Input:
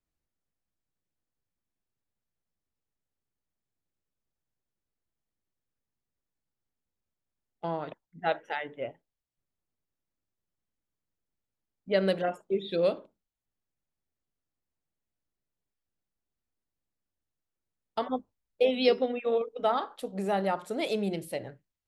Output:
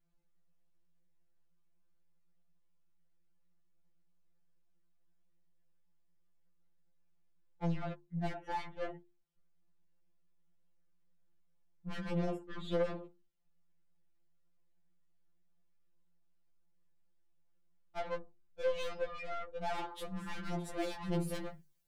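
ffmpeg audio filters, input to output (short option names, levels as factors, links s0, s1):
-af "bandreject=f=50:t=h:w=6,bandreject=f=100:t=h:w=6,bandreject=f=150:t=h:w=6,bandreject=f=200:t=h:w=6,bandreject=f=250:t=h:w=6,bandreject=f=300:t=h:w=6,bandreject=f=350:t=h:w=6,bandreject=f=400:t=h:w=6,bandreject=f=450:t=h:w=6,acompressor=threshold=0.0316:ratio=2.5,lowshelf=f=280:g=8,aeval=exprs='(tanh(89.1*val(0)+0.25)-tanh(0.25))/89.1':c=same,asetnsamples=n=441:p=0,asendcmd='19.67 highshelf g -4;21.35 highshelf g 10',highshelf=f=5300:g=-11,afftfilt=real='re*2.83*eq(mod(b,8),0)':imag='im*2.83*eq(mod(b,8),0)':win_size=2048:overlap=0.75,volume=1.88"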